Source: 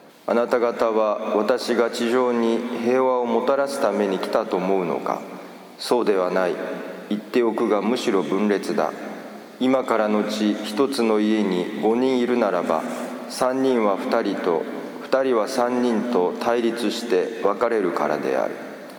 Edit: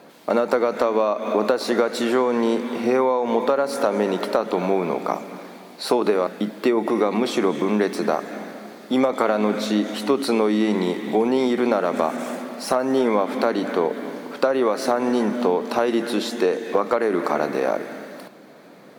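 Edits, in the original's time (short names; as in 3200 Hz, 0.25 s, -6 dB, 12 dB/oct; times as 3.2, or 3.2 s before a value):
6.27–6.97 cut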